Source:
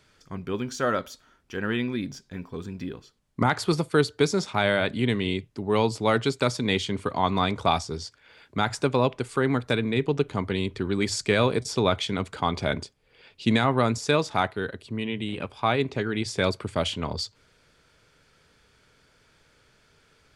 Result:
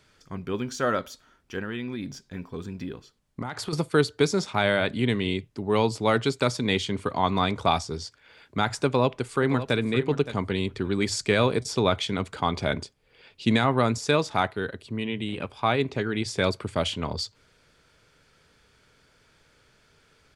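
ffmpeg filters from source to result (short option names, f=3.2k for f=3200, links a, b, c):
-filter_complex "[0:a]asettb=1/sr,asplit=3[a][b][c];[a]atrim=end=1.594[d];[b]atrim=start=1.59:end=3.73,asetpts=PTS-STARTPTS,afade=t=in:d=0.004:c=qsin,afade=t=out:st=2.136:d=0.004:c=qsin,acompressor=threshold=-28dB:ratio=6:attack=3.2:release=140:knee=1:detection=peak[e];[c]atrim=start=3.726[f];[d][e]acrossfade=d=0.004:c1=hsin:c2=qsin[g];[g][f]acrossfade=d=0.004:c1=qsin:c2=hsin,asplit=2[h][i];[i]afade=t=in:st=8.85:d=0.01,afade=t=out:st=9.76:d=0.01,aecho=0:1:570|1140:0.237137|0.0237137[j];[h][j]amix=inputs=2:normalize=0"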